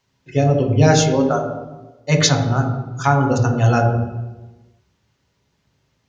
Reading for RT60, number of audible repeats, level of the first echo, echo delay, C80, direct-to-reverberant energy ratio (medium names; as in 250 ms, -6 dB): 1.2 s, no echo, no echo, no echo, 7.5 dB, 1.5 dB